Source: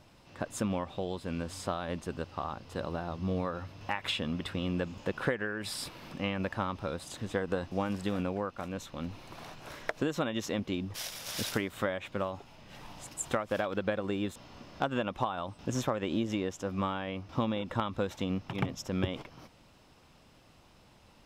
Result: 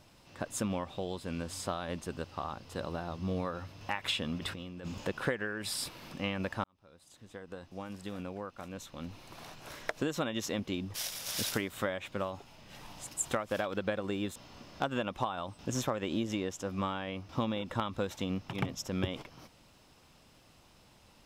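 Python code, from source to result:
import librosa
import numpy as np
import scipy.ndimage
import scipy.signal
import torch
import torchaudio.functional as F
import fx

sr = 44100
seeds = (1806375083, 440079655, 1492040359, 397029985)

y = fx.over_compress(x, sr, threshold_db=-39.0, ratio=-1.0, at=(4.36, 5.07))
y = fx.edit(y, sr, fx.fade_in_span(start_s=6.64, length_s=3.17), tone=tone)
y = fx.high_shelf(y, sr, hz=4300.0, db=6.5)
y = y * librosa.db_to_amplitude(-2.0)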